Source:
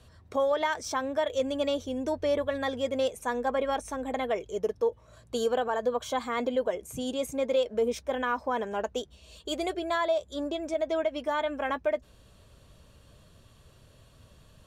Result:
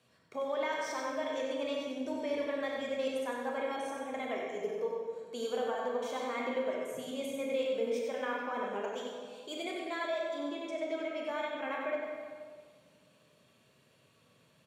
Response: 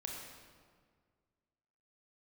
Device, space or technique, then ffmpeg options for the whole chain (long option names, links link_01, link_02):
PA in a hall: -filter_complex "[0:a]highpass=frequency=150:width=0.5412,highpass=frequency=150:width=1.3066,equalizer=frequency=2300:width_type=o:width=0.44:gain=8,aecho=1:1:94:0.501[link_01];[1:a]atrim=start_sample=2205[link_02];[link_01][link_02]afir=irnorm=-1:irlink=0,volume=-6.5dB"